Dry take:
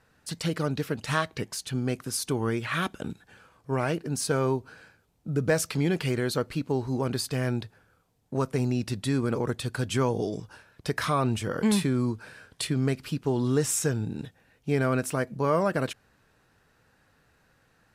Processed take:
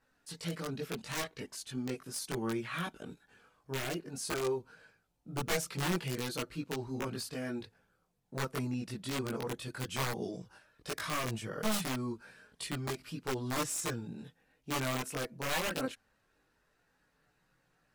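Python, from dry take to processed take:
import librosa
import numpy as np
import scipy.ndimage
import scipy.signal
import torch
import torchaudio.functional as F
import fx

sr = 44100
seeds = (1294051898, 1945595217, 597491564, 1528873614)

y = (np.mod(10.0 ** (17.5 / 20.0) * x + 1.0, 2.0) - 1.0) / 10.0 ** (17.5 / 20.0)
y = fx.peak_eq(y, sr, hz=80.0, db=-5.5, octaves=1.5)
y = fx.chorus_voices(y, sr, voices=4, hz=0.15, base_ms=20, depth_ms=3.6, mix_pct=55)
y = y * 10.0 ** (-5.5 / 20.0)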